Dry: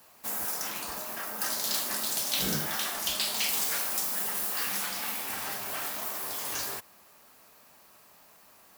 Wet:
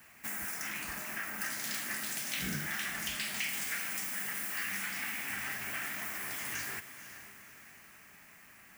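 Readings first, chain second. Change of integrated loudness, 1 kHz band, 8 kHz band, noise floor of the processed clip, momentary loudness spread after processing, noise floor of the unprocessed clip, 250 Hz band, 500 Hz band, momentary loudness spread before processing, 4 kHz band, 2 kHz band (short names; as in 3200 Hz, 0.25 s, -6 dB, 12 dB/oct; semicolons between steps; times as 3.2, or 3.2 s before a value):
-6.0 dB, -7.5 dB, -7.0 dB, -57 dBFS, 18 LU, -57 dBFS, -3.5 dB, -10.5 dB, 7 LU, -8.5 dB, +2.0 dB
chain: ten-band EQ 500 Hz -11 dB, 1000 Hz -9 dB, 2000 Hz +10 dB, 4000 Hz -11 dB, 16000 Hz -10 dB; compressor 2:1, threshold -43 dBFS, peak gain reduction 8 dB; diffused feedback echo 0.492 s, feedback 44%, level -12 dB; gain +4.5 dB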